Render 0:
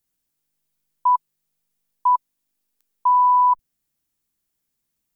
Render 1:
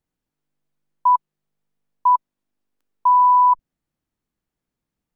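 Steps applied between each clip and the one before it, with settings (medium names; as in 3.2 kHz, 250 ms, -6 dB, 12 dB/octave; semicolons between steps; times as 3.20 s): low-pass 1.1 kHz 6 dB/octave; trim +4.5 dB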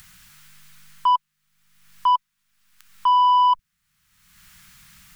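FFT filter 190 Hz 0 dB, 330 Hz -29 dB, 800 Hz -8 dB, 1.3 kHz +8 dB, 2 kHz +10 dB; in parallel at -1 dB: upward compressor, threshold -19 dBFS; on the sum: saturation -8.5 dBFS, distortion -18 dB; trim -4 dB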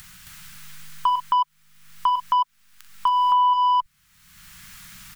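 on a send: loudspeakers at several distances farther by 14 m -11 dB, 92 m 0 dB; on the sum: compression 4:1, threshold -22 dBFS, peak gain reduction 9.5 dB; trim +3.5 dB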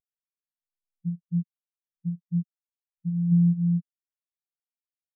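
sorted samples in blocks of 256 samples; spectral contrast expander 4:1; trim -2.5 dB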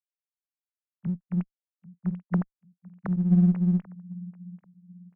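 formants replaced by sine waves; feedback delay 789 ms, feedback 32%, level -20.5 dB; in parallel at -8 dB: one-sided clip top -34 dBFS; on the sum: trim -1.5 dB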